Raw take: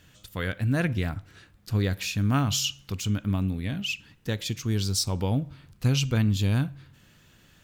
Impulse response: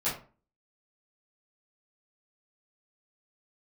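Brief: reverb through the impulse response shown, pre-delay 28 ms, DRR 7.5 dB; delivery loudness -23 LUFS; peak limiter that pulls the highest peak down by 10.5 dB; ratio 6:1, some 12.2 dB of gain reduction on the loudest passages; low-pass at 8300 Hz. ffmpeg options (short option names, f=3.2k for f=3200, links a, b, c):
-filter_complex "[0:a]lowpass=8.3k,acompressor=threshold=-32dB:ratio=6,alimiter=level_in=7.5dB:limit=-24dB:level=0:latency=1,volume=-7.5dB,asplit=2[a][b];[1:a]atrim=start_sample=2205,adelay=28[c];[b][c]afir=irnorm=-1:irlink=0,volume=-15.5dB[d];[a][d]amix=inputs=2:normalize=0,volume=18dB"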